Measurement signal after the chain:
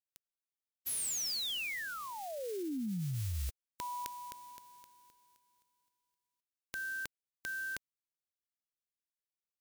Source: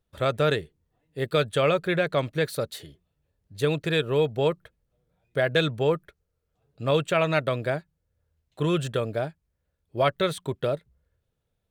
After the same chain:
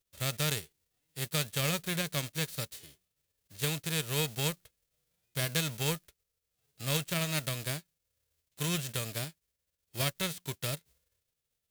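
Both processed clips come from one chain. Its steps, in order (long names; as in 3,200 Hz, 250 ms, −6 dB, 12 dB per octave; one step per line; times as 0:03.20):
spectral envelope flattened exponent 0.3
parametric band 980 Hz −8.5 dB 2 octaves
level −6.5 dB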